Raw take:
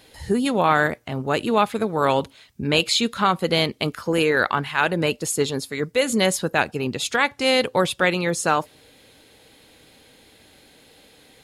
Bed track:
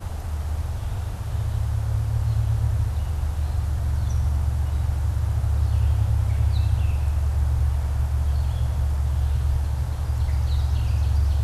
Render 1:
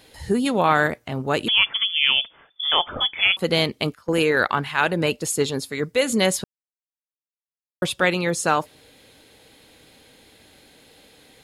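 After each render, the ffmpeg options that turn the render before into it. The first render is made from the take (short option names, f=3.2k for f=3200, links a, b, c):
-filter_complex "[0:a]asettb=1/sr,asplit=3[a][b][c];[a]atrim=end=1.484[d];[b]atrim=start=1.48:end=3.37,asetpts=PTS-STARTPTS,afade=t=in:d=0.004:c=qsin,afade=t=out:st=1.886:d=0.004:c=qsin,lowpass=f=3.1k:t=q:w=0.5098,lowpass=f=3.1k:t=q:w=0.6013,lowpass=f=3.1k:t=q:w=0.9,lowpass=f=3.1k:t=q:w=2.563,afreqshift=-3600[e];[c]atrim=start=3.366[f];[d][e]acrossfade=d=0.004:c1=hsin:c2=qsin[g];[g][f]acrossfade=d=0.004:c1=qsin:c2=hsin,asettb=1/sr,asplit=3[h][i][j];[h]atrim=end=3.944[k];[i]atrim=start=3.94:end=4.49,asetpts=PTS-STARTPTS,afade=t=in:d=0.004:c=qsin,afade=t=out:st=0.546:d=0.004:c=qsin,agate=range=-16dB:threshold=-26dB:ratio=16:release=100:detection=peak[l];[j]atrim=start=4.486[m];[k][l]acrossfade=d=0.004:c1=hsin:c2=qsin[n];[n][m]acrossfade=d=0.004:c1=qsin:c2=hsin,asplit=3[o][p][q];[o]atrim=end=6.44,asetpts=PTS-STARTPTS,afade=t=out:st=6.436:d=0.004:c=hsin[r];[p]atrim=start=6.44:end=7.82,asetpts=PTS-STARTPTS,volume=0[s];[q]atrim=start=7.82,asetpts=PTS-STARTPTS,afade=t=in:d=0.004:c=hsin[t];[r][s][t]concat=n=3:v=0:a=1"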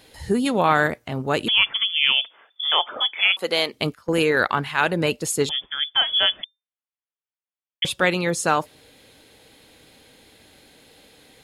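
-filter_complex "[0:a]asettb=1/sr,asplit=3[a][b][c];[a]atrim=end=2.124[d];[b]atrim=start=2.12:end=3.73,asetpts=PTS-STARTPTS,afade=t=in:d=0.004:c=qsin,afade=t=out:st=1.606:d=0.004:c=qsin,highpass=430[e];[c]atrim=start=3.726[f];[d][e]acrossfade=d=0.004:c1=hsin:c2=qsin[g];[g][f]acrossfade=d=0.004:c1=qsin:c2=hsin,asettb=1/sr,asplit=3[h][i][j];[h]atrim=end=5.494[k];[i]atrim=start=5.49:end=7.85,asetpts=PTS-STARTPTS,afade=t=in:d=0.004:c=qsin,afade=t=out:st=2.356:d=0.004:c=qsin,lowpass=f=3.1k:t=q:w=0.5098,lowpass=f=3.1k:t=q:w=0.6013,lowpass=f=3.1k:t=q:w=0.9,lowpass=f=3.1k:t=q:w=2.563,afreqshift=-3600[l];[j]atrim=start=7.846[m];[k][l]acrossfade=d=0.004:c1=hsin:c2=qsin[n];[n][m]acrossfade=d=0.004:c1=qsin:c2=hsin"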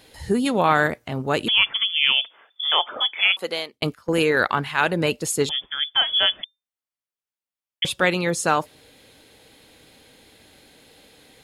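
-filter_complex "[0:a]asplit=2[a][b];[a]atrim=end=3.82,asetpts=PTS-STARTPTS,afade=t=out:st=3.32:d=0.5[c];[b]atrim=start=3.82,asetpts=PTS-STARTPTS,afade=t=in:d=0.004:c=hsin[d];[c][d]concat=n=2:v=0:a=1"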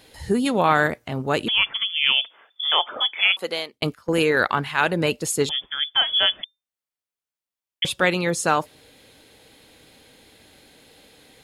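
-filter_complex "[0:a]asettb=1/sr,asplit=3[a][b][c];[a]atrim=end=1.444[d];[b]atrim=start=1.44:end=2.06,asetpts=PTS-STARTPTS,afade=t=in:d=0.004:c=qsin,afade=t=out:st=0.616:d=0.004:c=qsin,highshelf=f=4.3k:g=-7[e];[c]atrim=start=2.056[f];[d][e]acrossfade=d=0.004:c1=hsin:c2=qsin[g];[g][f]acrossfade=d=0.004:c1=qsin:c2=hsin"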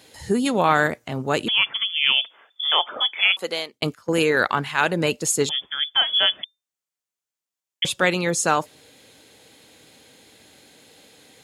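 -af "highpass=93,equalizer=f=6.9k:t=o:w=0.6:g=6"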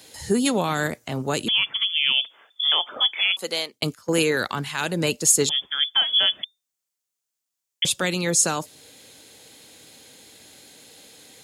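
-filter_complex "[0:a]acrossover=split=320|4100[a][b][c];[b]alimiter=limit=-15.5dB:level=0:latency=1:release=344[d];[c]acontrast=63[e];[a][d][e]amix=inputs=3:normalize=0"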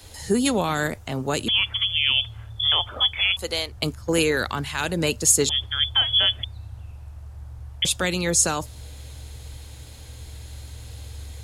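-filter_complex "[1:a]volume=-17dB[a];[0:a][a]amix=inputs=2:normalize=0"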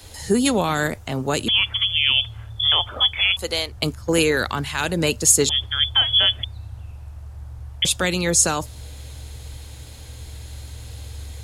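-af "volume=2.5dB"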